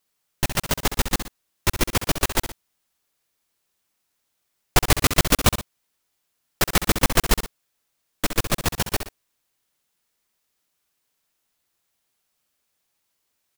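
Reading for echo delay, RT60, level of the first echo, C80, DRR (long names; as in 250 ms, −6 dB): 66 ms, no reverb audible, −10.0 dB, no reverb audible, no reverb audible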